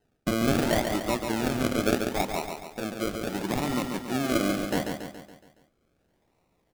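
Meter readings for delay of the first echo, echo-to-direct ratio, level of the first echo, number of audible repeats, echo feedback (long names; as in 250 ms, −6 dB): 140 ms, −4.0 dB, −5.5 dB, 6, 51%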